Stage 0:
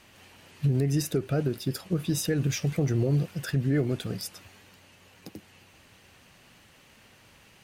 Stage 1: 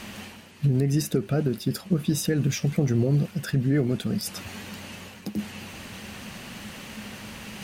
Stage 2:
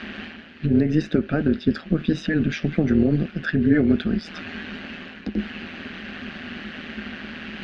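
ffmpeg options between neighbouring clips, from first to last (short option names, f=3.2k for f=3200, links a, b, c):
-af "areverse,acompressor=mode=upward:threshold=-29dB:ratio=2.5,areverse,equalizer=f=210:t=o:w=0.26:g=13.5,volume=1.5dB"
-af "highpass=200,equalizer=f=250:t=q:w=4:g=9,equalizer=f=470:t=q:w=4:g=-6,equalizer=f=950:t=q:w=4:g=-10,equalizer=f=1.6k:t=q:w=4:g=8,lowpass=f=3.7k:w=0.5412,lowpass=f=3.7k:w=1.3066,tremolo=f=160:d=0.621,volume=7dB"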